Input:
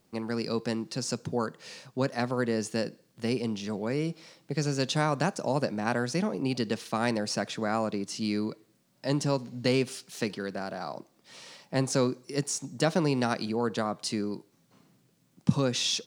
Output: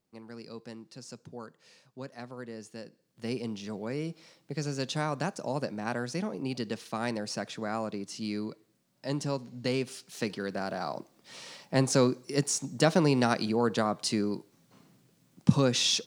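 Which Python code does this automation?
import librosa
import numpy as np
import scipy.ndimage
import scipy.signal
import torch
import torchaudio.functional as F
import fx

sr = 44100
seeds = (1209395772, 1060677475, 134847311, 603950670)

y = fx.gain(x, sr, db=fx.line((2.88, -13.5), (3.31, -4.5), (9.84, -4.5), (10.72, 2.0)))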